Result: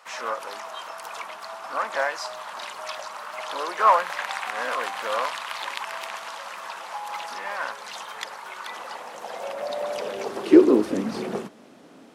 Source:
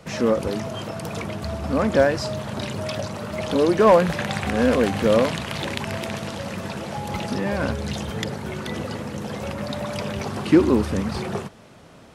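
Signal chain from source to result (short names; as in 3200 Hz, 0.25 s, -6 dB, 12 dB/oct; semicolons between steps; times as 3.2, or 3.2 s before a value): resonator 530 Hz, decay 0.43 s, mix 30%; high-pass sweep 1000 Hz -> 260 Hz, 8.64–11.12; harmoniser +3 st -9 dB, +4 st -16 dB; gain -1.5 dB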